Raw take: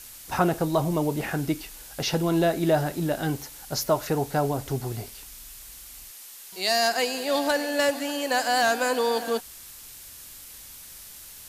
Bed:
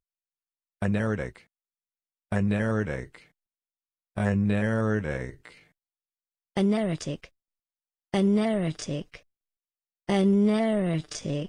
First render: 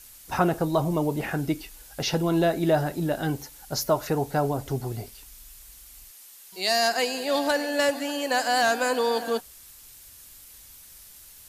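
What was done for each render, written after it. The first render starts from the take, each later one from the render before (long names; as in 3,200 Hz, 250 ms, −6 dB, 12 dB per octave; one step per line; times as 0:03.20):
broadband denoise 6 dB, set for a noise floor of −45 dBFS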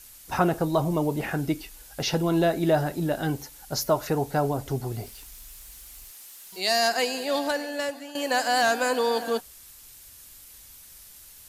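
0:04.92–0:06.60: converter with a step at zero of −50.5 dBFS
0:07.14–0:08.15: fade out, to −12.5 dB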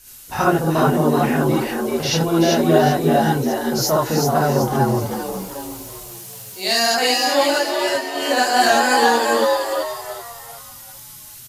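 on a send: echo with shifted repeats 381 ms, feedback 39%, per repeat +78 Hz, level −3.5 dB
on the sum: reverb whose tail is shaped and stops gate 90 ms rising, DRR −5.5 dB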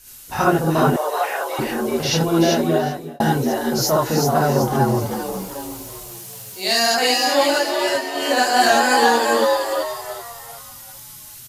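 0:00.96–0:01.59: Butterworth high-pass 510 Hz
0:02.45–0:03.20: fade out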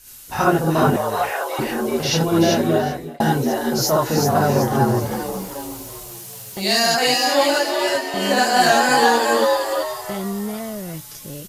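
mix in bed −5 dB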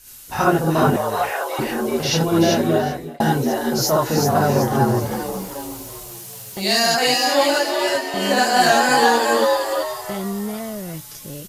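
no processing that can be heard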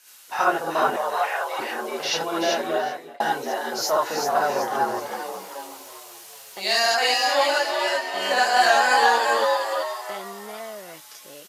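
high-pass filter 650 Hz 12 dB per octave
high-shelf EQ 6,300 Hz −11 dB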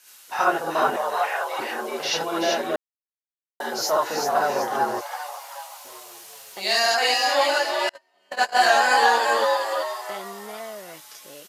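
0:02.76–0:03.60: silence
0:05.01–0:05.85: Butterworth high-pass 610 Hz 48 dB per octave
0:07.89–0:08.58: noise gate −20 dBFS, range −37 dB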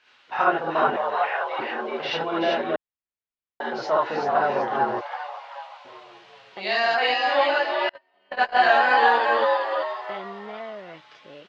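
low-pass filter 3,400 Hz 24 dB per octave
low-shelf EQ 110 Hz +8.5 dB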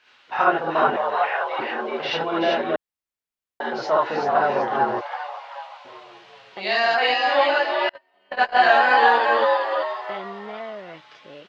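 level +2 dB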